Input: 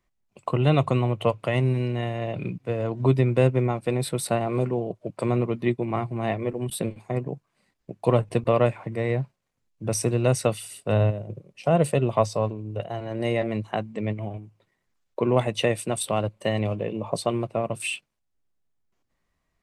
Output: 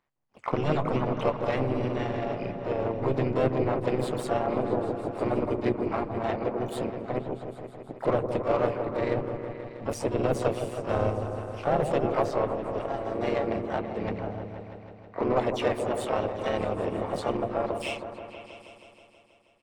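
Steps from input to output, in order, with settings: overdrive pedal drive 18 dB, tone 1 kHz, clips at -6.5 dBFS; AM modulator 140 Hz, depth 70%; harmony voices -3 st -7 dB, +3 st -9 dB, +12 st -14 dB; on a send: delay with an opening low-pass 160 ms, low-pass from 750 Hz, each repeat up 1 oct, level -6 dB; on the sum: trim -5 dB

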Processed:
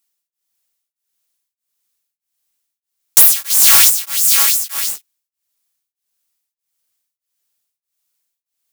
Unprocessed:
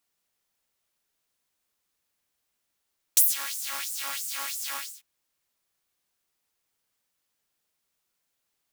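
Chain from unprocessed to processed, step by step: treble shelf 2.4 kHz +9.5 dB; waveshaping leveller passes 3; saturation -3 dBFS, distortion -13 dB; treble shelf 6.6 kHz +4.5 dB; 3.50–3.90 s: waveshaping leveller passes 2; loudness maximiser +2 dB; tremolo of two beating tones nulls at 1.6 Hz

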